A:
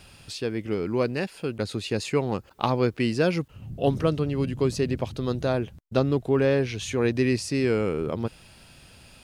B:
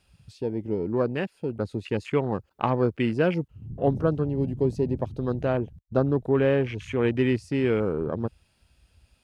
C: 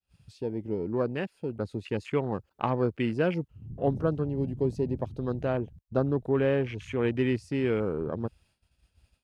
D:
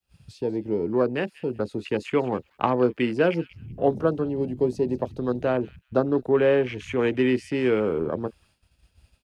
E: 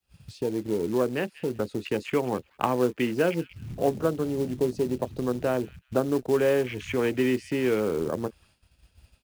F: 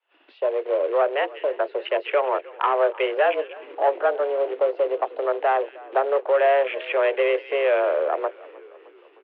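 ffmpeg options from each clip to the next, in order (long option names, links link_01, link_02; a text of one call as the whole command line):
ffmpeg -i in.wav -af "afwtdn=0.0178" out.wav
ffmpeg -i in.wav -af "agate=range=-33dB:threshold=-55dB:ratio=3:detection=peak,volume=-3.5dB" out.wav
ffmpeg -i in.wav -filter_complex "[0:a]acrossover=split=210|520|2200[link_01][link_02][link_03][link_04];[link_01]acompressor=threshold=-44dB:ratio=6[link_05];[link_02]asplit=2[link_06][link_07];[link_07]adelay=24,volume=-7.5dB[link_08];[link_06][link_08]amix=inputs=2:normalize=0[link_09];[link_04]asplit=2[link_10][link_11];[link_11]adelay=188,lowpass=frequency=3300:poles=1,volume=-9dB,asplit=2[link_12][link_13];[link_13]adelay=188,lowpass=frequency=3300:poles=1,volume=0.21,asplit=2[link_14][link_15];[link_15]adelay=188,lowpass=frequency=3300:poles=1,volume=0.21[link_16];[link_10][link_12][link_14][link_16]amix=inputs=4:normalize=0[link_17];[link_05][link_09][link_03][link_17]amix=inputs=4:normalize=0,volume=6dB" out.wav
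ffmpeg -i in.wav -filter_complex "[0:a]asplit=2[link_01][link_02];[link_02]acompressor=threshold=-29dB:ratio=12,volume=1dB[link_03];[link_01][link_03]amix=inputs=2:normalize=0,acrusher=bits=5:mode=log:mix=0:aa=0.000001,volume=-5dB" out.wav
ffmpeg -i in.wav -filter_complex "[0:a]asplit=2[link_01][link_02];[link_02]highpass=frequency=720:poles=1,volume=18dB,asoftclip=type=tanh:threshold=-8dB[link_03];[link_01][link_03]amix=inputs=2:normalize=0,lowpass=frequency=1600:poles=1,volume=-6dB,asplit=6[link_04][link_05][link_06][link_07][link_08][link_09];[link_05]adelay=308,afreqshift=-53,volume=-21dB[link_10];[link_06]adelay=616,afreqshift=-106,volume=-25dB[link_11];[link_07]adelay=924,afreqshift=-159,volume=-29dB[link_12];[link_08]adelay=1232,afreqshift=-212,volume=-33dB[link_13];[link_09]adelay=1540,afreqshift=-265,volume=-37.1dB[link_14];[link_04][link_10][link_11][link_12][link_13][link_14]amix=inputs=6:normalize=0,highpass=frequency=230:width_type=q:width=0.5412,highpass=frequency=230:width_type=q:width=1.307,lowpass=frequency=3100:width_type=q:width=0.5176,lowpass=frequency=3100:width_type=q:width=0.7071,lowpass=frequency=3100:width_type=q:width=1.932,afreqshift=140" out.wav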